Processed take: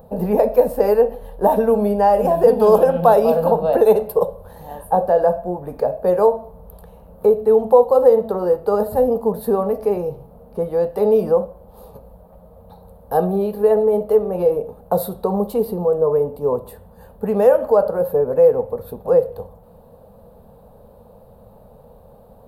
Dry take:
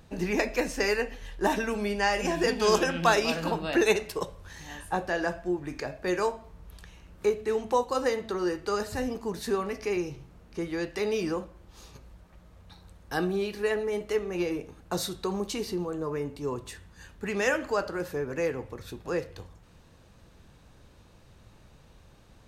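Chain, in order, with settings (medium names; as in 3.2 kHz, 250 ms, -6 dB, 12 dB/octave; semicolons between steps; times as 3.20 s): FFT filter 130 Hz 0 dB, 220 Hz +8 dB, 330 Hz -9 dB, 470 Hz +15 dB, 840 Hz +9 dB, 2.1 kHz -18 dB, 4.3 kHz -12 dB, 6.2 kHz -24 dB, 12 kHz +9 dB; in parallel at +2 dB: peak limiter -12 dBFS, peak gain reduction 9.5 dB; on the sum: trim -2 dB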